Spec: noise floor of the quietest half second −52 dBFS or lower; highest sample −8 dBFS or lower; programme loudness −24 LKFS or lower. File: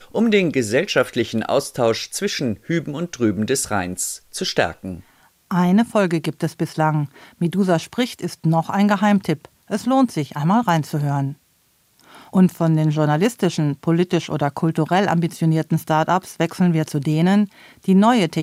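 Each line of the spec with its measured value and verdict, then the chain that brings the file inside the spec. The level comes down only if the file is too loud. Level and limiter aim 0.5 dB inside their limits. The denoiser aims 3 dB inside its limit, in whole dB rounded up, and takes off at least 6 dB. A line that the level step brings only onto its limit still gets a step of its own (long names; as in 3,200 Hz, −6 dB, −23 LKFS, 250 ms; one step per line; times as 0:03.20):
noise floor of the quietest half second −61 dBFS: in spec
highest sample −4.5 dBFS: out of spec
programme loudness −20.0 LKFS: out of spec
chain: level −4.5 dB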